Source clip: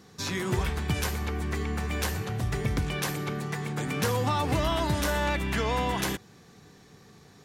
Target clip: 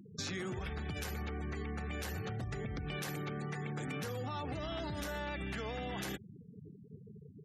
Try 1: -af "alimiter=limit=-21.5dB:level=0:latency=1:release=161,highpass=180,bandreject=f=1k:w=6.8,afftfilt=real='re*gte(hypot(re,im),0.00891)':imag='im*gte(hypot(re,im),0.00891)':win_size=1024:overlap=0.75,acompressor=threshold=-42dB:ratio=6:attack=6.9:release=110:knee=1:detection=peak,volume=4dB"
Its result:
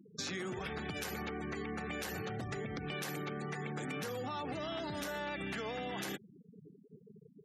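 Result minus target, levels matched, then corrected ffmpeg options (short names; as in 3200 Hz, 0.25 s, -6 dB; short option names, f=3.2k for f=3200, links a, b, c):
125 Hz band -4.5 dB
-af "alimiter=limit=-21.5dB:level=0:latency=1:release=161,highpass=60,bandreject=f=1k:w=6.8,afftfilt=real='re*gte(hypot(re,im),0.00891)':imag='im*gte(hypot(re,im),0.00891)':win_size=1024:overlap=0.75,acompressor=threshold=-42dB:ratio=6:attack=6.9:release=110:knee=1:detection=peak,volume=4dB"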